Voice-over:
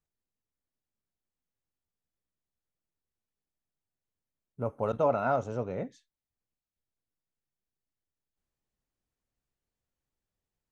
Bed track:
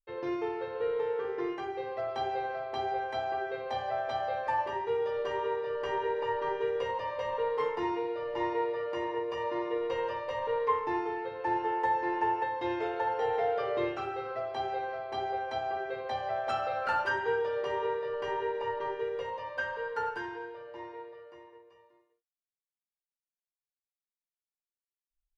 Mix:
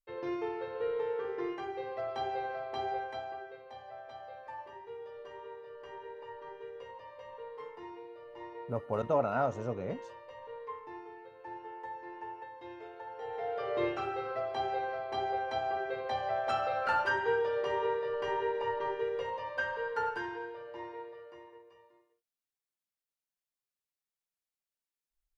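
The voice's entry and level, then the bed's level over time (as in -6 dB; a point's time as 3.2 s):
4.10 s, -2.5 dB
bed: 2.94 s -2.5 dB
3.65 s -14.5 dB
13.07 s -14.5 dB
13.85 s 0 dB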